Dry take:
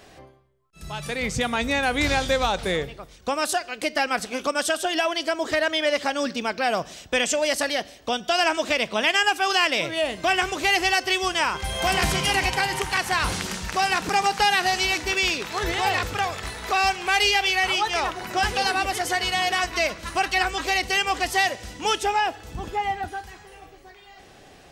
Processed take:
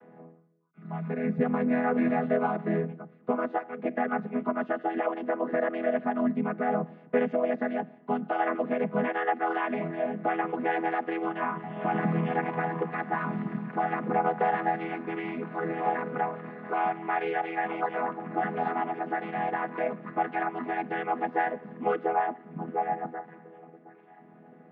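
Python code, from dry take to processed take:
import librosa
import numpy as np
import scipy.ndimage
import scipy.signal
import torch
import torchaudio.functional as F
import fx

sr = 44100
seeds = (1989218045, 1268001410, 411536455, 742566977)

y = fx.chord_vocoder(x, sr, chord='major triad', root=52)
y = scipy.signal.sosfilt(scipy.signal.butter(4, 1900.0, 'lowpass', fs=sr, output='sos'), y)
y = fx.low_shelf(y, sr, hz=160.0, db=3.0)
y = y * 10.0 ** (-4.0 / 20.0)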